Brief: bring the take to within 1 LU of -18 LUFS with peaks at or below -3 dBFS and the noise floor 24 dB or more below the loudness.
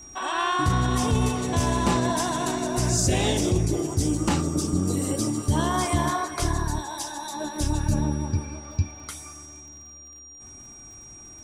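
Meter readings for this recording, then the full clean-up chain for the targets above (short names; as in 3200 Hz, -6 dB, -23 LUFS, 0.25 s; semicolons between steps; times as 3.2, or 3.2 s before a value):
ticks 46/s; steady tone 5700 Hz; tone level -43 dBFS; loudness -25.0 LUFS; peak -12.0 dBFS; loudness target -18.0 LUFS
-> de-click; notch 5700 Hz, Q 30; gain +7 dB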